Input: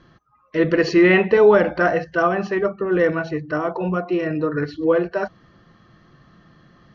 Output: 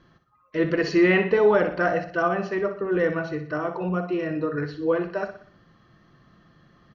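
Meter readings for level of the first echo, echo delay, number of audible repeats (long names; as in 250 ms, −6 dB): −10.0 dB, 61 ms, 4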